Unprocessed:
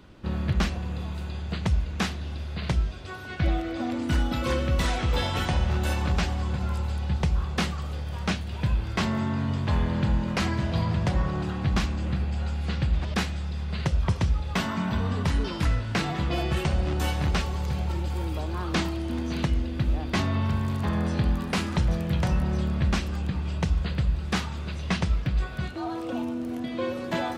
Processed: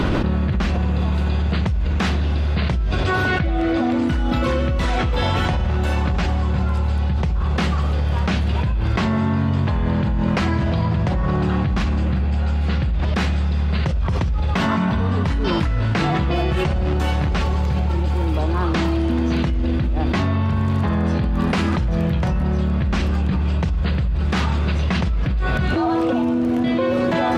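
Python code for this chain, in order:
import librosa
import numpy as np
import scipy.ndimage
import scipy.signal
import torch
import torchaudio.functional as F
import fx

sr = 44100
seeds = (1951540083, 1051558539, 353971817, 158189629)

y = fx.lowpass(x, sr, hz=2700.0, slope=6)
y = fx.env_flatten(y, sr, amount_pct=100)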